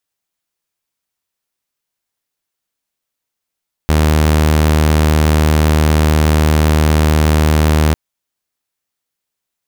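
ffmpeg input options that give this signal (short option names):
-f lavfi -i "aevalsrc='0.473*(2*mod(77*t,1)-1)':d=4.05:s=44100"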